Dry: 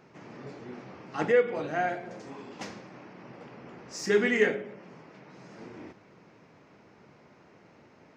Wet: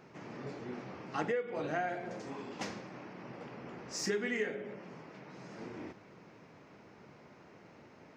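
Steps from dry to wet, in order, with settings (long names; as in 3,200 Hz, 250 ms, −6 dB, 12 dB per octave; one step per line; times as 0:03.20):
downward compressor 8 to 1, threshold −31 dBFS, peak gain reduction 13.5 dB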